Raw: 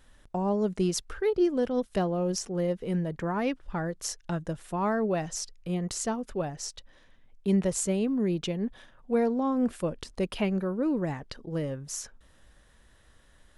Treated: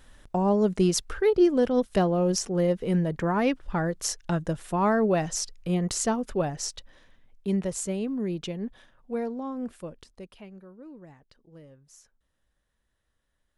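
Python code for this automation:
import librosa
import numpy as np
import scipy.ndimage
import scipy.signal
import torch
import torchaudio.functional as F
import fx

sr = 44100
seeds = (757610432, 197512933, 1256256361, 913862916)

y = fx.gain(x, sr, db=fx.line((6.64, 4.5), (7.61, -2.5), (8.64, -2.5), (9.98, -9.0), (10.42, -18.0)))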